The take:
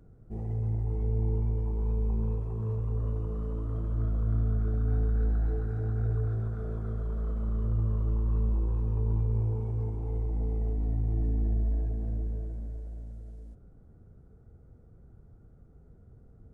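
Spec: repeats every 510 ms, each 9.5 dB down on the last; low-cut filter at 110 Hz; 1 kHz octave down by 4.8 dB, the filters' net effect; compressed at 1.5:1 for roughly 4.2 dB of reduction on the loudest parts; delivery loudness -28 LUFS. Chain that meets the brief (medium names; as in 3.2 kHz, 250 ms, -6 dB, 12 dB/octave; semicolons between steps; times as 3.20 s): high-pass 110 Hz; peaking EQ 1 kHz -6.5 dB; compression 1.5:1, threshold -41 dBFS; feedback delay 510 ms, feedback 33%, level -9.5 dB; trim +11.5 dB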